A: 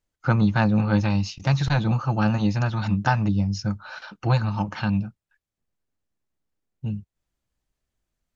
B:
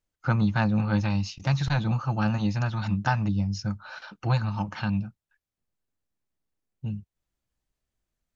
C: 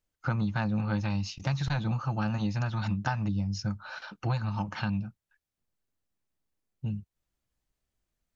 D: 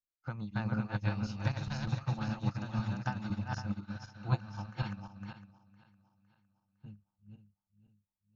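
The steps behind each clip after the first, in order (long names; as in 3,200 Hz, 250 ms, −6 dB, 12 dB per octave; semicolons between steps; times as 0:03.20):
dynamic equaliser 410 Hz, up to −4 dB, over −37 dBFS, Q 1.2; level −3 dB
downward compressor 3 to 1, threshold −27 dBFS, peak gain reduction 7 dB
feedback delay that plays each chunk backwards 254 ms, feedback 65%, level −1 dB; expander for the loud parts 2.5 to 1, over −36 dBFS; level −2 dB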